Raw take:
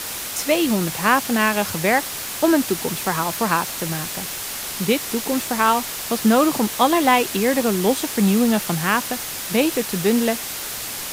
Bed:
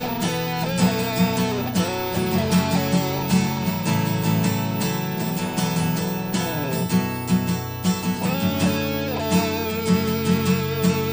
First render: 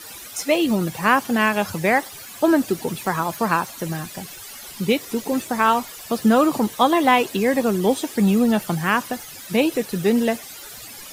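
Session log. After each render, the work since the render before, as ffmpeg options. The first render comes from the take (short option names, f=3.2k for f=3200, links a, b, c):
-af "afftdn=nr=14:nf=-30"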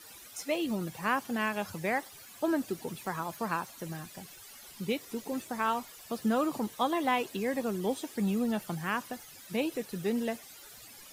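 -af "volume=-12.5dB"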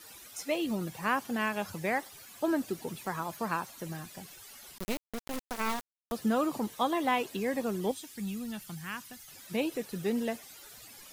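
-filter_complex "[0:a]asettb=1/sr,asplit=3[a][b][c];[a]atrim=end=4.784[d];[b]atrim=start=4.78:end=6.12,asetpts=PTS-STARTPTS,afade=t=in:d=0.004:c=qsin,afade=t=out:st=1.336:d=0.004:c=qsin,acrusher=bits=3:dc=4:mix=0:aa=0.000001[e];[c]atrim=start=6.116[f];[d][e]acrossfade=d=0.004:c1=hsin:c2=qsin[g];[g][f]acrossfade=d=0.004:c1=qsin:c2=hsin,asettb=1/sr,asplit=3[h][i][j];[h]atrim=end=7.914[k];[i]atrim=start=7.91:end=9.28,asetpts=PTS-STARTPTS,afade=t=in:d=0.004:c=qsin,afade=t=out:st=1.366:d=0.004:c=qsin,equalizer=f=550:t=o:w=2.6:g=-15[l];[j]atrim=start=9.276[m];[k][l]acrossfade=d=0.004:c1=hsin:c2=qsin[n];[n][m]acrossfade=d=0.004:c1=qsin:c2=hsin"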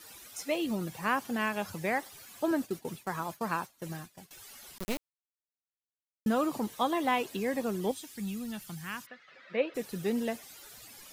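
-filter_complex "[0:a]asettb=1/sr,asplit=3[a][b][c];[a]atrim=end=2.514[d];[b]atrim=start=2.51:end=4.31,asetpts=PTS-STARTPTS,afade=t=in:d=0.004:c=qsin,afade=t=out:st=1.796:d=0.004:c=qsin,agate=range=-33dB:threshold=-40dB:ratio=3:release=100:detection=peak[e];[c]atrim=start=4.306[f];[d][e]acrossfade=d=0.004:c1=hsin:c2=qsin[g];[g][f]acrossfade=d=0.004:c1=qsin:c2=hsin,asplit=3[h][i][j];[h]afade=t=out:st=9.05:d=0.02[k];[i]highpass=310,equalizer=f=330:t=q:w=4:g=-6,equalizer=f=530:t=q:w=4:g=8,equalizer=f=860:t=q:w=4:g=-7,equalizer=f=1.3k:t=q:w=4:g=6,equalizer=f=1.9k:t=q:w=4:g=7,equalizer=f=3.1k:t=q:w=4:g=-4,lowpass=f=3.4k:w=0.5412,lowpass=f=3.4k:w=1.3066,afade=t=in:st=9.05:d=0.02,afade=t=out:st=9.74:d=0.02[l];[j]afade=t=in:st=9.74:d=0.02[m];[k][l][m]amix=inputs=3:normalize=0,asplit=3[n][o][p];[n]atrim=end=5.1,asetpts=PTS-STARTPTS,afade=t=out:st=5.096:d=0.004:c=hsin[q];[o]atrim=start=5.1:end=6.26,asetpts=PTS-STARTPTS,volume=0[r];[p]atrim=start=6.26,asetpts=PTS-STARTPTS,afade=t=in:d=0.004:c=hsin[s];[q][r][s]concat=n=3:v=0:a=1"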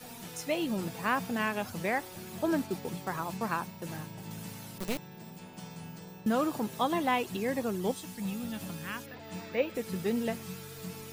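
-filter_complex "[1:a]volume=-22.5dB[a];[0:a][a]amix=inputs=2:normalize=0"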